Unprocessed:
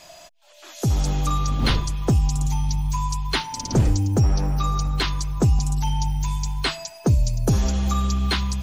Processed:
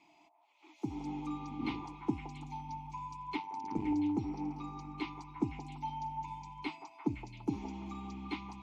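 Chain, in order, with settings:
formant filter u
echo through a band-pass that steps 171 ms, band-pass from 740 Hz, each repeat 0.7 octaves, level −2 dB
0:03.37–0:03.86: amplitude modulation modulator 99 Hz, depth 50%
level −1 dB

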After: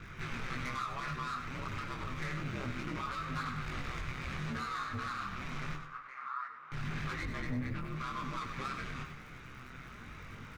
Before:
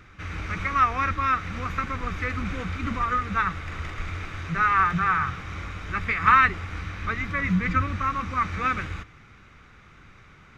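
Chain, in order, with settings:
0:07.23–0:07.85: spectral tilt −2 dB per octave
downward compressor 12 to 1, threshold −31 dBFS, peak gain reduction 19 dB
soft clipping −37 dBFS, distortion −9 dB
surface crackle 210 per second −54 dBFS
ring modulation 65 Hz
0:05.75–0:06.72: resonant band-pass 1,200 Hz, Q 3.5
repeating echo 97 ms, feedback 32%, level −8.5 dB
micro pitch shift up and down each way 10 cents
level +8 dB

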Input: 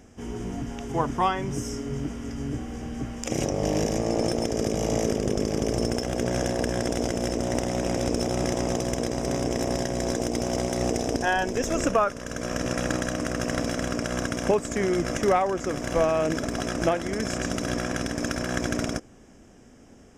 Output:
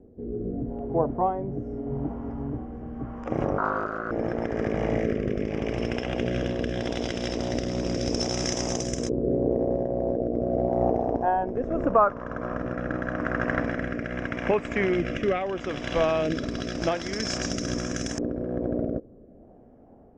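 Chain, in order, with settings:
0:03.58–0:04.11: ring modulation 830 Hz
auto-filter low-pass saw up 0.11 Hz 440–6,900 Hz
rotating-speaker cabinet horn 0.8 Hz

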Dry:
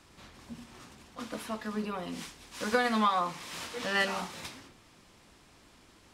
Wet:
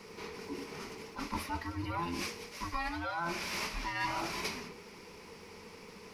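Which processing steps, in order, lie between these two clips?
frequency inversion band by band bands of 500 Hz
high-shelf EQ 6,400 Hz −6 dB
reversed playback
downward compressor 8 to 1, threshold −40 dBFS, peak gain reduction 17.5 dB
reversed playback
EQ curve with evenly spaced ripples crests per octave 0.84, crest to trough 9 dB
surface crackle 190 per second −64 dBFS
level +7 dB

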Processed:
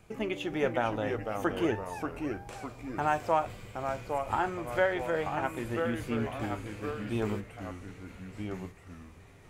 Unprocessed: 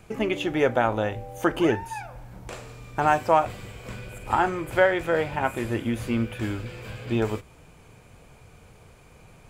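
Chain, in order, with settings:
delay with pitch and tempo change per echo 406 ms, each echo −2 semitones, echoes 2, each echo −6 dB
level −7.5 dB

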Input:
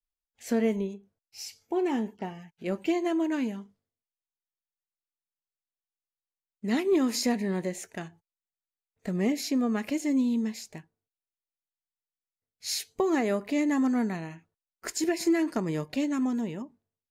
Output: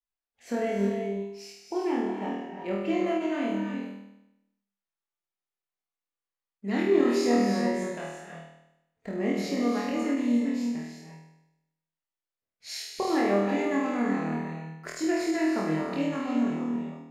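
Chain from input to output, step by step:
low-pass filter 1,800 Hz 6 dB per octave
low-shelf EQ 380 Hz −7 dB
flutter between parallel walls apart 4.3 metres, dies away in 0.86 s
reverb whose tail is shaped and stops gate 390 ms rising, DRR 3.5 dB
every ending faded ahead of time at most 140 dB per second

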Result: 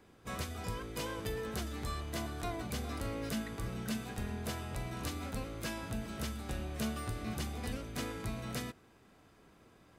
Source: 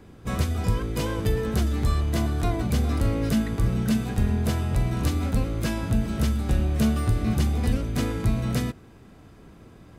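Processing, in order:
low-shelf EQ 320 Hz −11.5 dB
level −7 dB

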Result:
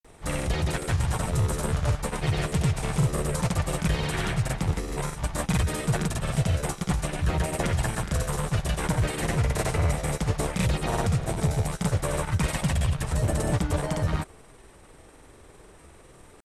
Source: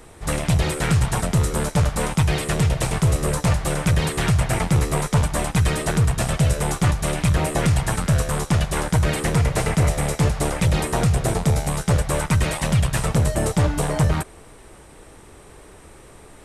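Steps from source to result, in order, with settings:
granular cloud, pitch spread up and down by 0 semitones
level −4.5 dB

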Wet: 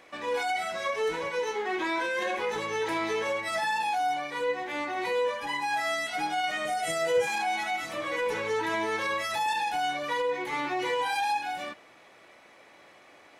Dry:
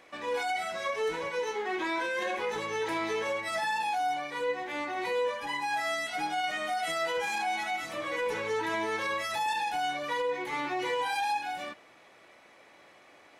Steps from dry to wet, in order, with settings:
0:06.65–0:07.27: octave-band graphic EQ 125/250/500/1,000/4,000/8,000 Hz +12/−4/+9/−8/−4/+6 dB
level +2 dB

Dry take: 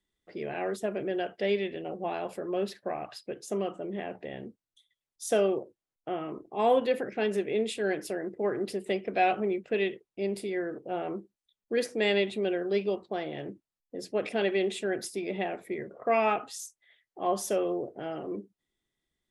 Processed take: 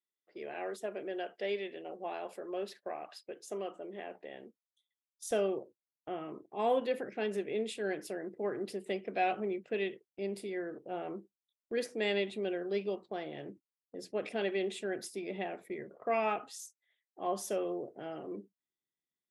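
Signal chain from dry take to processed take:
high-pass filter 320 Hz 12 dB per octave, from 0:05.31 120 Hz
noise gate −47 dBFS, range −9 dB
level −6 dB

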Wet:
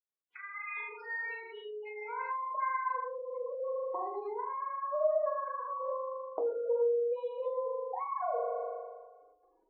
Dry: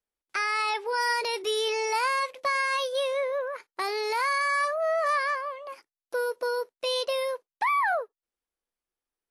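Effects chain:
camcorder AGC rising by 65 dB per second
square-wave tremolo 9.5 Hz, depth 60%, duty 25%
sine wavefolder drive 5 dB, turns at −3.5 dBFS
flutter between parallel walls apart 6.6 metres, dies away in 1.4 s
healed spectral selection 0:00.69–0:01.28, 490–1,100 Hz after
downward compressor 2.5 to 1, threshold −25 dBFS, peak gain reduction 9 dB
gate on every frequency bin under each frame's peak −10 dB strong
convolution reverb RT60 0.30 s, pre-delay 3 ms, DRR 1.5 dB
wrong playback speed 25 fps video run at 24 fps
head-to-tape spacing loss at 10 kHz 43 dB
band-pass filter sweep 3,100 Hz → 660 Hz, 0:00.22–0:04.11
parametric band 1,400 Hz −7 dB 0.21 octaves
level −2.5 dB

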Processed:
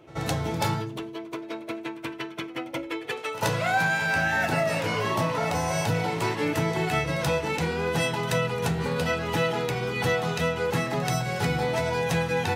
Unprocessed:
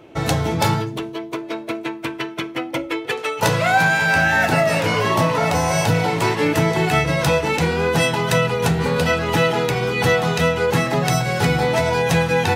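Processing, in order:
echo ahead of the sound 81 ms −17.5 dB
level −8 dB

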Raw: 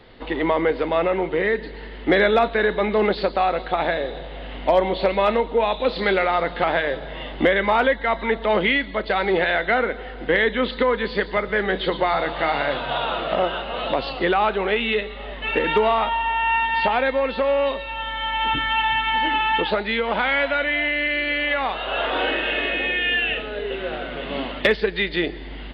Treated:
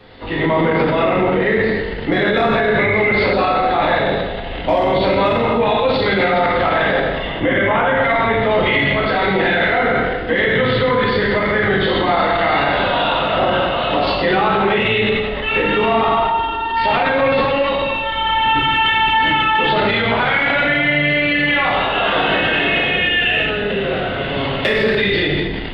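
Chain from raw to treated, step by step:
sub-octave generator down 1 octave, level +1 dB
0:07.27–0:07.97: elliptic low-pass filter 3,300 Hz
0:16.06–0:16.77: phaser with its sweep stopped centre 580 Hz, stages 6
dense smooth reverb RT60 1.2 s, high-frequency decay 0.9×, DRR −7 dB
transient designer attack +1 dB, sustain +7 dB
0:02.79–0:03.33: parametric band 2,100 Hz +14.5 dB 0.3 octaves
brickwall limiter −6.5 dBFS, peak gain reduction 9.5 dB
low-shelf EQ 110 Hz −8 dB

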